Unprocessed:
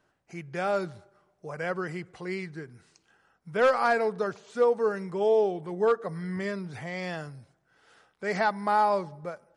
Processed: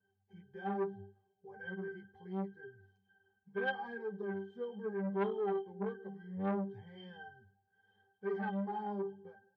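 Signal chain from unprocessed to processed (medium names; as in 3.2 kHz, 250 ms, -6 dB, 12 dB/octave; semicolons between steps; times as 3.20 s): pitch-class resonator G, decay 0.43 s; flange 0.73 Hz, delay 6.4 ms, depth 8.2 ms, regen +8%; transformer saturation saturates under 870 Hz; trim +10.5 dB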